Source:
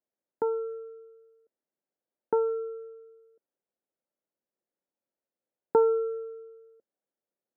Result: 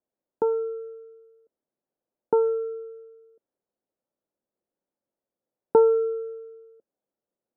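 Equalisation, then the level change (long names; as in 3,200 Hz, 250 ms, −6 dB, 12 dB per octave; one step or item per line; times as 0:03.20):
low-pass filter 1,400 Hz
high-frequency loss of the air 490 metres
+6.0 dB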